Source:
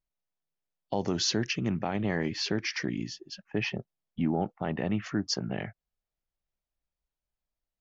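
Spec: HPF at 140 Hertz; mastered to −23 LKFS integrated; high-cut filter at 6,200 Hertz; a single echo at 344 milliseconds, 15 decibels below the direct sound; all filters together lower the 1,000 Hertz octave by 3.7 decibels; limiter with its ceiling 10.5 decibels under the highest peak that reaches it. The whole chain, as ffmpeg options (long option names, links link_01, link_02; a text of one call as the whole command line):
ffmpeg -i in.wav -af "highpass=140,lowpass=6200,equalizer=frequency=1000:width_type=o:gain=-5.5,alimiter=level_in=4dB:limit=-24dB:level=0:latency=1,volume=-4dB,aecho=1:1:344:0.178,volume=15.5dB" out.wav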